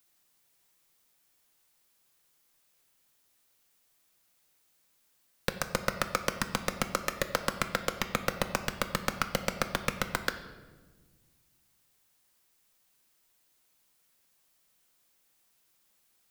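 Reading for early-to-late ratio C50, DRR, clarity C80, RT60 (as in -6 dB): 11.0 dB, 7.5 dB, 12.5 dB, 1.4 s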